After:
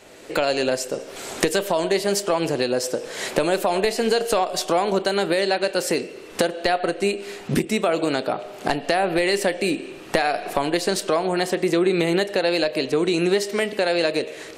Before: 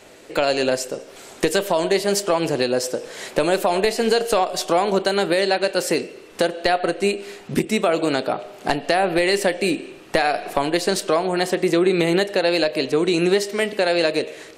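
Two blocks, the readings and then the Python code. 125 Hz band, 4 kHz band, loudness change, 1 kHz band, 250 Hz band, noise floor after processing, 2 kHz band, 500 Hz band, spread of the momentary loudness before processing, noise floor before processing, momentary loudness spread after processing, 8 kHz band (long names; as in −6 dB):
−1.0 dB, −1.5 dB, −1.5 dB, −2.0 dB, −1.5 dB, −39 dBFS, −1.5 dB, −1.5 dB, 7 LU, −43 dBFS, 6 LU, −0.5 dB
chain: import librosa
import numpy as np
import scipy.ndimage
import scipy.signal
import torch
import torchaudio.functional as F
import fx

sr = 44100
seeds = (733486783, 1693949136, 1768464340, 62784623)

y = fx.recorder_agc(x, sr, target_db=-10.5, rise_db_per_s=18.0, max_gain_db=30)
y = F.gain(torch.from_numpy(y), -2.0).numpy()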